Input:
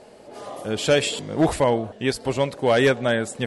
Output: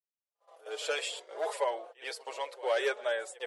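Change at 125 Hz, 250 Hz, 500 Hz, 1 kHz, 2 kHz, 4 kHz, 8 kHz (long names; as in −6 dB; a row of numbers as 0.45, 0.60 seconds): below −40 dB, −30.0 dB, −12.0 dB, −10.0 dB, −10.0 dB, −10.5 dB, −11.5 dB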